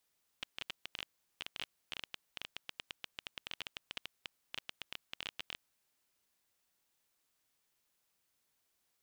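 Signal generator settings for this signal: random clicks 13/s -23 dBFS 5.15 s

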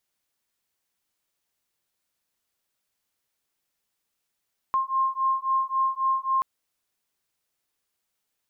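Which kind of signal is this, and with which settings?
beating tones 1060 Hz, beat 3.7 Hz, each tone -25 dBFS 1.68 s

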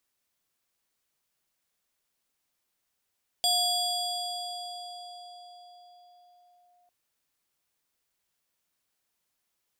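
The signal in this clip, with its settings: FM tone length 3.45 s, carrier 711 Hz, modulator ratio 5.73, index 1.7, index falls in 3.33 s linear, decay 4.91 s, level -21 dB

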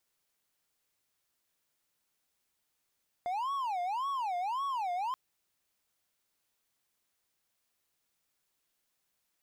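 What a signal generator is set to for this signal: siren wail 704–1120 Hz 1.8/s triangle -29 dBFS 1.88 s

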